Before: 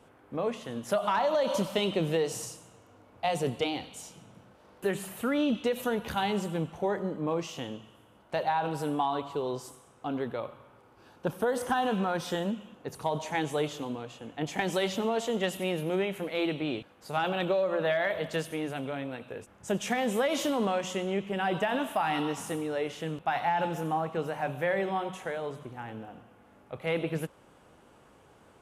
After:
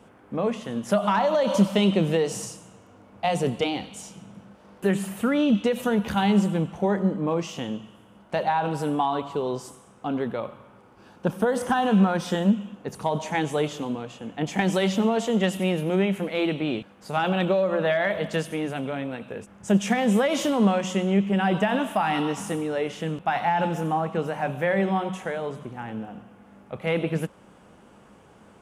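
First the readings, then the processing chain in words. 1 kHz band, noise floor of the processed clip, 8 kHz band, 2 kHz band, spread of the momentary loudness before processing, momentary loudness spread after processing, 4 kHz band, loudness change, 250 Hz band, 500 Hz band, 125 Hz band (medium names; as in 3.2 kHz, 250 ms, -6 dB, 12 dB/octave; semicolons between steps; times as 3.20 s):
+4.5 dB, -53 dBFS, +3.5 dB, +4.5 dB, 12 LU, 13 LU, +3.5 dB, +6.0 dB, +9.0 dB, +4.5 dB, +9.0 dB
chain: graphic EQ with 31 bands 200 Hz +10 dB, 4 kHz -3 dB, 12.5 kHz -7 dB; trim +4.5 dB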